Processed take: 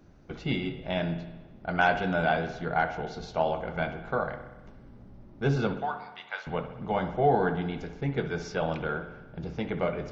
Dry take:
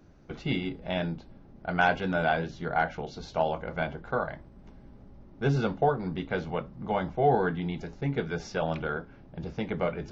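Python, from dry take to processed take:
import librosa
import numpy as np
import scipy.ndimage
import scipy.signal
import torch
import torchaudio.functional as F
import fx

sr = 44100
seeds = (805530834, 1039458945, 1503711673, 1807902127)

y = fx.highpass(x, sr, hz=830.0, slope=24, at=(5.77, 6.47))
y = fx.rev_spring(y, sr, rt60_s=1.1, pass_ms=(59,), chirp_ms=45, drr_db=9.0)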